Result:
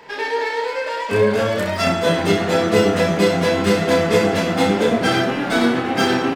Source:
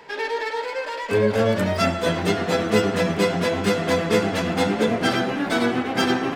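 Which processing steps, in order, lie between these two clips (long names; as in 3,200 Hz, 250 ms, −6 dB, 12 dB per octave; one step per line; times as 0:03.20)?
0:01.40–0:01.87: low-shelf EQ 400 Hz −7.5 dB
on a send: reverse bouncing-ball delay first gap 30 ms, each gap 1.1×, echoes 5
on the sum: level +1.5 dB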